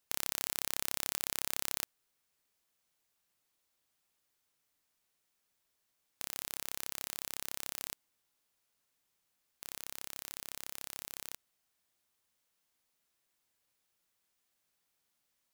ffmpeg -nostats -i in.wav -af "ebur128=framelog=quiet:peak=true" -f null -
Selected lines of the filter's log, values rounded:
Integrated loudness:
  I:         -38.3 LUFS
  Threshold: -48.5 LUFS
Loudness range:
  LRA:        11.3 LU
  Threshold: -63.1 LUFS
  LRA low:   -49.5 LUFS
  LRA high:  -38.2 LUFS
True peak:
  Peak:       -6.6 dBFS